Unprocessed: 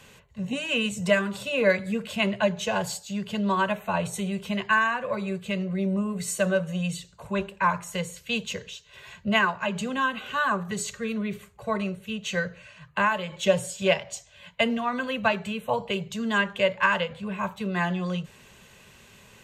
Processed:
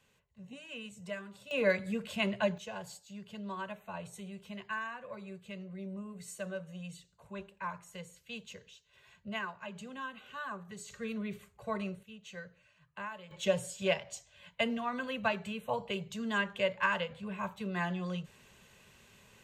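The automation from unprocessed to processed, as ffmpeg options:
-af "asetnsamples=n=441:p=0,asendcmd='1.51 volume volume -7dB;2.58 volume volume -16dB;10.9 volume volume -8.5dB;12.03 volume volume -18.5dB;13.31 volume volume -8dB',volume=-19dB"

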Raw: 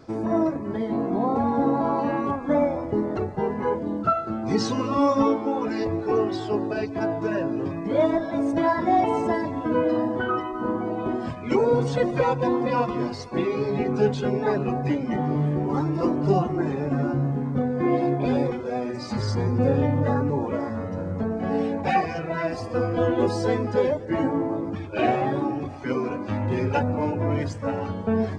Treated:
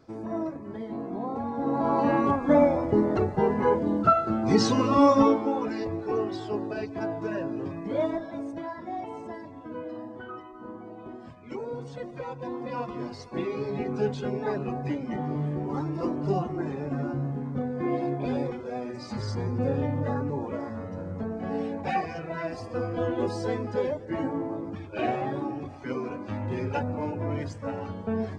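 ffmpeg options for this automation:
-af "volume=11dB,afade=t=in:st=1.58:d=0.54:silence=0.281838,afade=t=out:st=5.06:d=0.75:silence=0.421697,afade=t=out:st=7.91:d=0.76:silence=0.334965,afade=t=in:st=12.25:d=1.16:silence=0.354813"

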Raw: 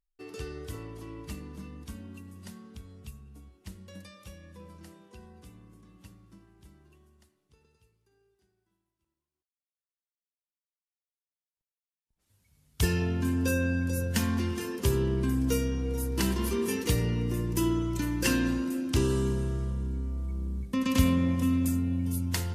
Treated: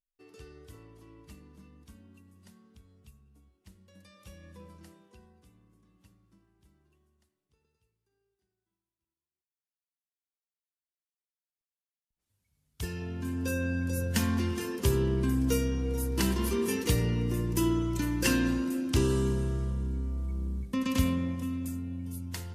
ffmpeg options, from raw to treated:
-af "volume=9.5dB,afade=t=in:st=3.96:d=0.52:silence=0.298538,afade=t=out:st=4.48:d=0.93:silence=0.334965,afade=t=in:st=12.94:d=1.28:silence=0.316228,afade=t=out:st=20.48:d=1:silence=0.398107"

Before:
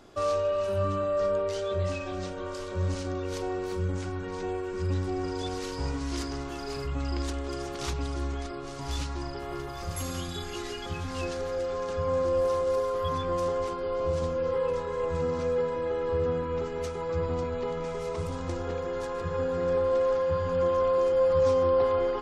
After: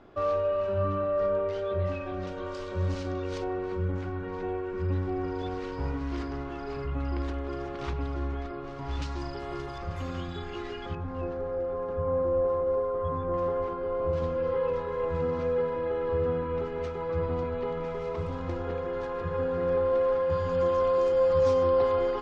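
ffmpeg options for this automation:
-af "asetnsamples=n=441:p=0,asendcmd='2.27 lowpass f 4400;3.44 lowpass f 2300;9.02 lowpass f 5400;9.78 lowpass f 2500;10.95 lowpass f 1100;13.34 lowpass f 1700;14.13 lowpass f 2900;20.3 lowpass f 6700',lowpass=2.3k"

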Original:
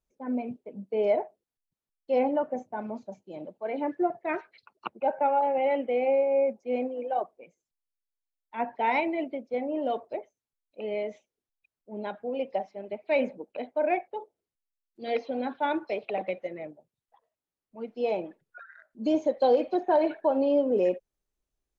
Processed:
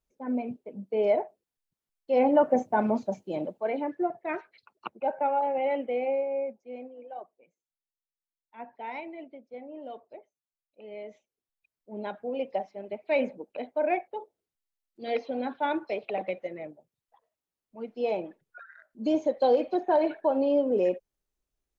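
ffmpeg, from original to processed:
-af "volume=21.5dB,afade=t=in:st=2.15:d=0.48:silence=0.334965,afade=t=out:st=3.24:d=0.61:silence=0.251189,afade=t=out:st=5.87:d=0.87:silence=0.316228,afade=t=in:st=10.85:d=1.15:silence=0.266073"

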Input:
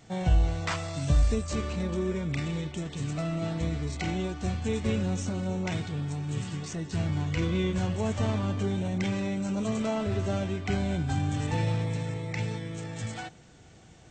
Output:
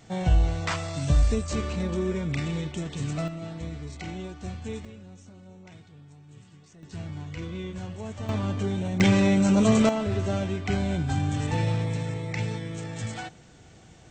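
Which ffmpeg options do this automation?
-af "asetnsamples=n=441:p=0,asendcmd='3.28 volume volume -5.5dB;4.85 volume volume -17.5dB;6.83 volume volume -7.5dB;8.29 volume volume 1dB;9 volume volume 10dB;9.89 volume volume 2dB',volume=2dB"

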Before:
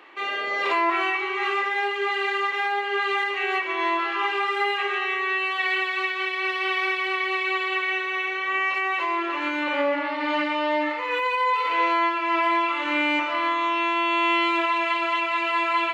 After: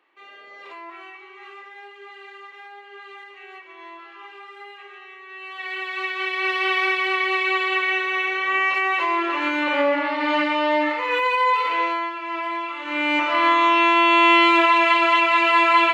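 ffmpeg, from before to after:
-af "volume=16dB,afade=t=in:st=5.28:d=0.47:silence=0.281838,afade=t=in:st=5.75:d=0.8:silence=0.334965,afade=t=out:st=11.51:d=0.55:silence=0.354813,afade=t=in:st=12.84:d=0.67:silence=0.237137"

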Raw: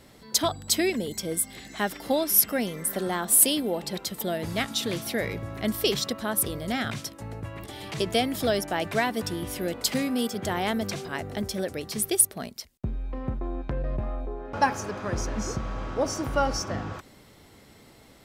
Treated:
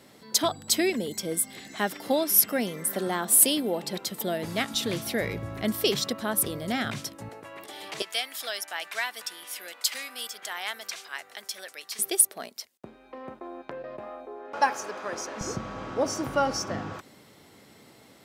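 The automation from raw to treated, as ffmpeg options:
-af "asetnsamples=n=441:p=0,asendcmd='4.74 highpass f 54;5.63 highpass f 110;7.29 highpass f 410;8.02 highpass f 1300;11.99 highpass f 430;15.41 highpass f 130',highpass=150"

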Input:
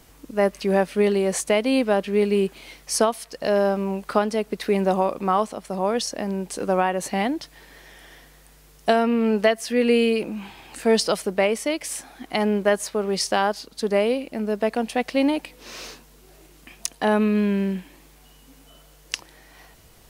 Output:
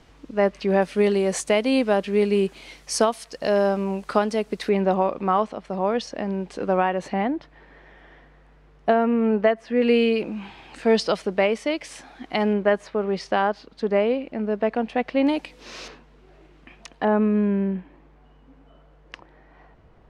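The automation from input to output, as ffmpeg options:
-af "asetnsamples=n=441:p=0,asendcmd='0.82 lowpass f 8400;4.69 lowpass f 3300;7.13 lowpass f 1800;9.82 lowpass f 4300;12.53 lowpass f 2500;15.27 lowpass f 5900;15.88 lowpass f 2400;17.05 lowpass f 1400',lowpass=4.2k"

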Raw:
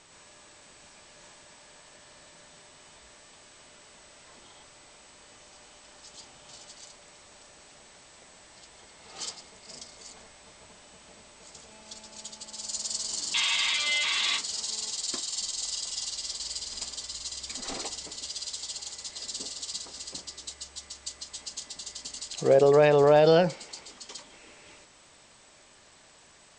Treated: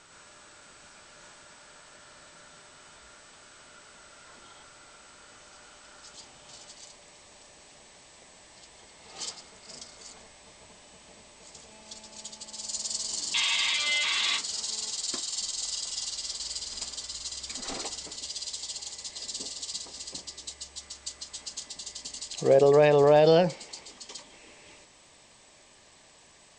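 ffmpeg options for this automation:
-af "asetnsamples=n=441:p=0,asendcmd='6.13 equalizer g 1.5;6.72 equalizer g -6;9.31 equalizer g 3;10.17 equalizer g -6.5;13.8 equalizer g 1;18.16 equalizer g -9;20.81 equalizer g -0.5;21.66 equalizer g -8.5',equalizer=f=1.4k:t=o:w=0.22:g=11.5"

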